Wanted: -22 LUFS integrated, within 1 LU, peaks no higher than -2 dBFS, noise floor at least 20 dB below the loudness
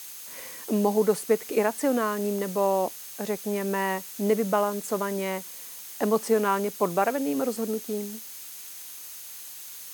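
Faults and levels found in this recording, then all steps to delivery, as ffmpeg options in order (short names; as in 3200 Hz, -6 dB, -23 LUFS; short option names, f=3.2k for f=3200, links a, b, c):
steady tone 6400 Hz; tone level -51 dBFS; noise floor -42 dBFS; noise floor target -47 dBFS; loudness -27.0 LUFS; peak -10.0 dBFS; loudness target -22.0 LUFS
-> -af "bandreject=f=6.4k:w=30"
-af "afftdn=nr=6:nf=-42"
-af "volume=5dB"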